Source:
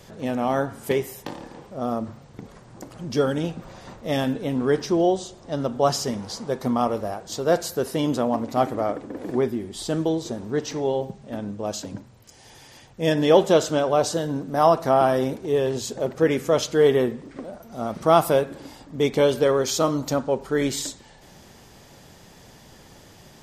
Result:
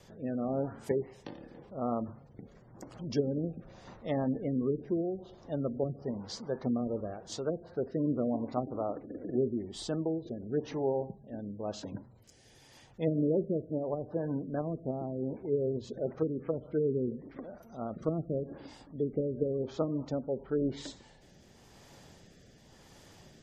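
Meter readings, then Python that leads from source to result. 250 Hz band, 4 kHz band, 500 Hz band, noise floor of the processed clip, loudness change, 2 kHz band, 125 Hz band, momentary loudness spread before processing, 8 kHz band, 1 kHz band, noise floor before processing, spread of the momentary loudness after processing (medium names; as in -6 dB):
-7.5 dB, -17.5 dB, -11.5 dB, -59 dBFS, -11.0 dB, -20.5 dB, -7.0 dB, 15 LU, -20.0 dB, -18.0 dB, -49 dBFS, 13 LU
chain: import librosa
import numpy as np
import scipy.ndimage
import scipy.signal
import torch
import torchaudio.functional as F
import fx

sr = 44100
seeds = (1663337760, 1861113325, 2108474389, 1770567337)

y = fx.env_lowpass_down(x, sr, base_hz=320.0, full_db=-16.0)
y = fx.rotary(y, sr, hz=0.9)
y = fx.spec_gate(y, sr, threshold_db=-30, keep='strong')
y = y * librosa.db_to_amplitude(-6.0)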